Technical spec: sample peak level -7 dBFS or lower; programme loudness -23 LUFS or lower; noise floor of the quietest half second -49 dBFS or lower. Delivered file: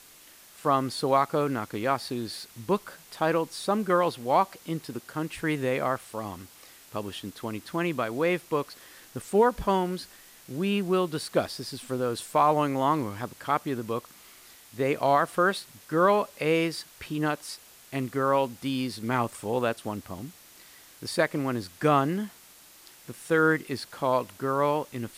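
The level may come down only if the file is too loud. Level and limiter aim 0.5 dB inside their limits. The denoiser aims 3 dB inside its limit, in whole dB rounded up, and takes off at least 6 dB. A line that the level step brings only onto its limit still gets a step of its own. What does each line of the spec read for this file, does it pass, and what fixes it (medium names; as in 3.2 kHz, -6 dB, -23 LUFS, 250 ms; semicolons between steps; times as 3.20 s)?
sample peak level -10.5 dBFS: pass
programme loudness -27.5 LUFS: pass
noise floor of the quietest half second -53 dBFS: pass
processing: none needed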